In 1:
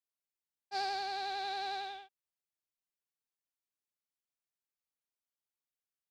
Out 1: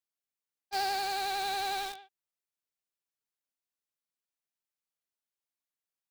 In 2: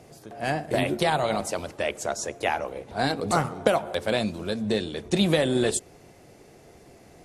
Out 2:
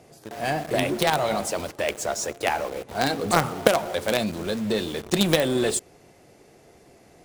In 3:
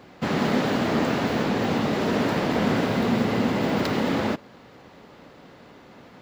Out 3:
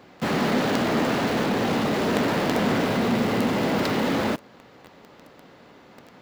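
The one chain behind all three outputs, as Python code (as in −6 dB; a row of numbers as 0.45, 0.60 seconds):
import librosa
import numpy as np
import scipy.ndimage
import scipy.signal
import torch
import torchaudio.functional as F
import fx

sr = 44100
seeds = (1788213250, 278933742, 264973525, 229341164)

p1 = fx.low_shelf(x, sr, hz=150.0, db=-4.5)
p2 = fx.quant_companded(p1, sr, bits=2)
p3 = p1 + (p2 * librosa.db_to_amplitude(-8.5))
y = p3 * librosa.db_to_amplitude(-1.0)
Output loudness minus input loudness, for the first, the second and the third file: +5.0, +1.5, +0.5 LU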